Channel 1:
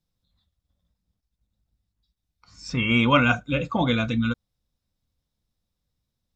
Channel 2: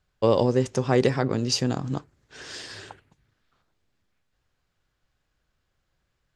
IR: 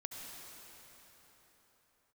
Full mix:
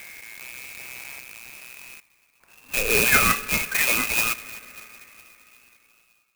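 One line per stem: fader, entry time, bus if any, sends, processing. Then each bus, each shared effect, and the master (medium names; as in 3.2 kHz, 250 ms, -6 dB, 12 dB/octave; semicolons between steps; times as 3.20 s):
-1.0 dB, 0.00 s, send -10.5 dB, bit crusher 9-bit
-15.0 dB, 0.00 s, send -14 dB, spectrogram pixelated in time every 400 ms; auto duck -7 dB, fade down 0.55 s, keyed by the first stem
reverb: on, pre-delay 63 ms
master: frequency inversion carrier 2.7 kHz; sampling jitter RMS 0.052 ms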